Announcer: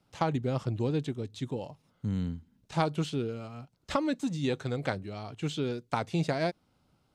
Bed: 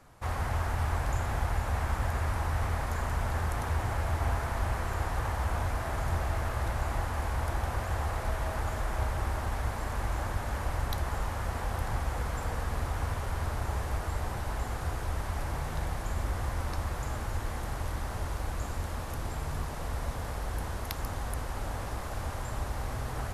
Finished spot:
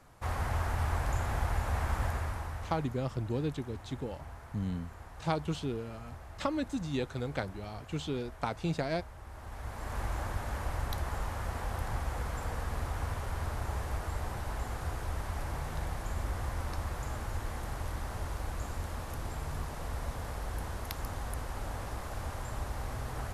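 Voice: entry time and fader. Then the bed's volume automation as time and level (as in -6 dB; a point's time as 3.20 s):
2.50 s, -3.5 dB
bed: 2.05 s -1.5 dB
3.04 s -17 dB
9.23 s -17 dB
9.97 s -3 dB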